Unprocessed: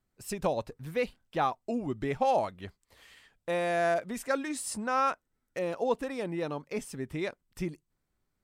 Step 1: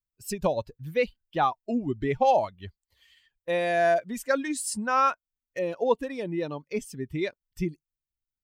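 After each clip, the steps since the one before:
spectral dynamics exaggerated over time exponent 1.5
level +6.5 dB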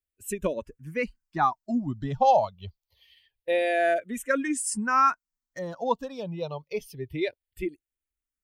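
frequency shifter mixed with the dry sound −0.26 Hz
level +2.5 dB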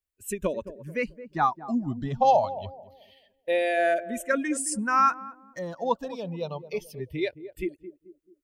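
feedback echo with a band-pass in the loop 218 ms, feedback 42%, band-pass 330 Hz, level −12 dB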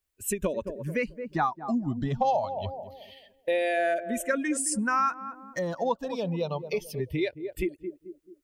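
downward compressor 2.5 to 1, threshold −35 dBFS, peak gain reduction 13.5 dB
level +7 dB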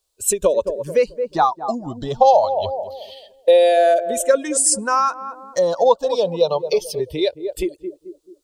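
octave-band graphic EQ 125/250/500/1,000/2,000/4,000/8,000 Hz −5/−7/+11/+6/−10/+11/+8 dB
level +4.5 dB

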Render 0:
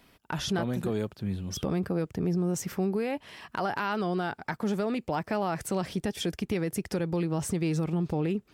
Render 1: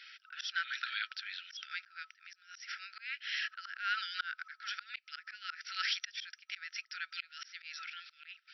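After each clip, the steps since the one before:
brick-wall band-pass 1,300–5,800 Hz
volume swells 372 ms
level +11.5 dB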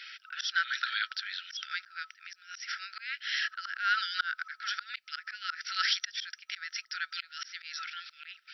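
dynamic equaliser 2,500 Hz, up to −8 dB, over −55 dBFS, Q 3
level +7.5 dB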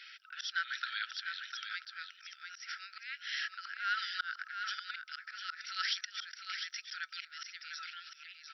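single-tap delay 701 ms −7 dB
level −6 dB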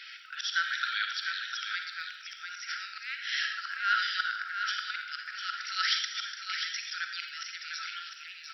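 surface crackle 15 per second −55 dBFS
on a send at −4.5 dB: convolution reverb RT60 0.60 s, pre-delay 41 ms
on the sum: level +5.5 dB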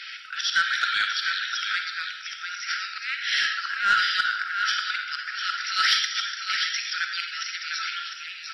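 soft clipping −17.5 dBFS, distortion −24 dB
level +7.5 dB
AAC 32 kbit/s 32,000 Hz

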